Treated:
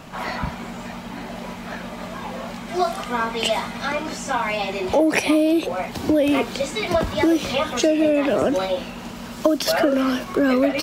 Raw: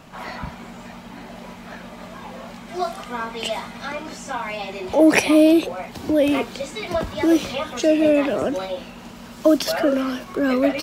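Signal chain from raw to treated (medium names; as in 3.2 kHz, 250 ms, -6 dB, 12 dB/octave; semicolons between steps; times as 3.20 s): compression 12:1, threshold -19 dBFS, peak gain reduction 11 dB; trim +5 dB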